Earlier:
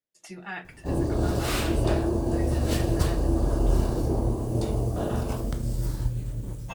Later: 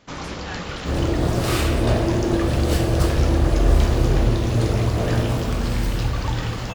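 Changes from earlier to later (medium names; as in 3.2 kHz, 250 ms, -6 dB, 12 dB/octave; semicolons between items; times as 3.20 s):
first sound: unmuted; reverb: on, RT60 1.3 s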